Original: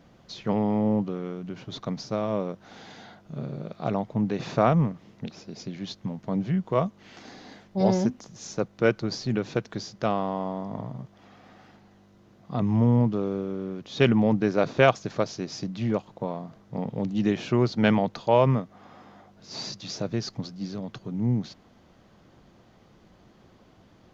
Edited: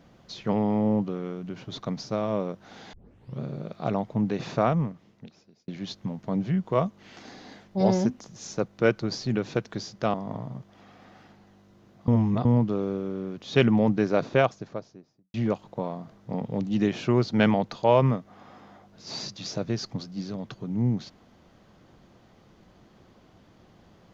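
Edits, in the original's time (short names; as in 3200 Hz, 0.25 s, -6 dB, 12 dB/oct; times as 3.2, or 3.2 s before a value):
2.93 tape start 0.47 s
4.33–5.68 fade out
10.14–10.58 cut
12.52–12.89 reverse
14.4–15.78 studio fade out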